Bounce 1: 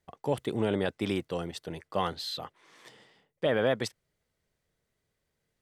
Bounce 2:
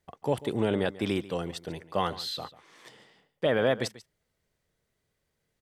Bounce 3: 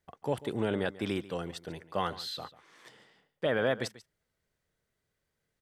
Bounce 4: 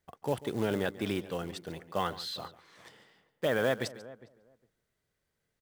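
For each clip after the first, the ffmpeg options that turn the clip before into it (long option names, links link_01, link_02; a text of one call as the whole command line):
ffmpeg -i in.wav -af "aecho=1:1:141:0.133,volume=1.5dB" out.wav
ffmpeg -i in.wav -af "equalizer=frequency=1500:width=2.6:gain=4,volume=-4dB" out.wav
ffmpeg -i in.wav -filter_complex "[0:a]acrusher=bits=5:mode=log:mix=0:aa=0.000001,asplit=2[link_01][link_02];[link_02]adelay=408,lowpass=frequency=1000:poles=1,volume=-17.5dB,asplit=2[link_03][link_04];[link_04]adelay=408,lowpass=frequency=1000:poles=1,volume=0.16[link_05];[link_01][link_03][link_05]amix=inputs=3:normalize=0" out.wav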